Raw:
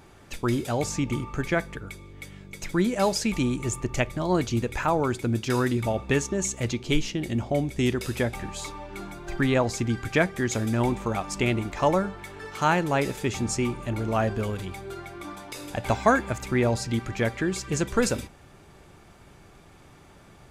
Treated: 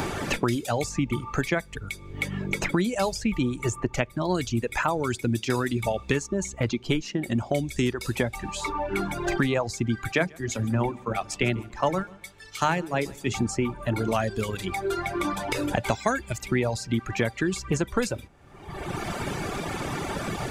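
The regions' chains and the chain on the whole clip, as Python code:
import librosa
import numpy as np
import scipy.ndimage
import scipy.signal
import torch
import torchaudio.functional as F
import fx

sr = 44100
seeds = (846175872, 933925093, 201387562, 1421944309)

y = fx.chain(x, sr, fx.hum_notches(base_hz=50, count=9),
    fx.echo_feedback(ms=143, feedback_pct=39, wet_db=-12),
    fx.band_widen(depth_pct=100), at=(10.12, 13.32))
y = fx.dereverb_blind(y, sr, rt60_s=1.2)
y = fx.peak_eq(y, sr, hz=12000.0, db=-2.0, octaves=0.39)
y = fx.band_squash(y, sr, depth_pct=100)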